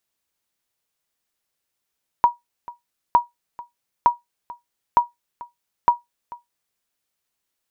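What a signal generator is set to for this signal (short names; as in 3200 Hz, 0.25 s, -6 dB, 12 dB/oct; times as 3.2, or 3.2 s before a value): sonar ping 958 Hz, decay 0.16 s, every 0.91 s, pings 5, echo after 0.44 s, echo -21 dB -5.5 dBFS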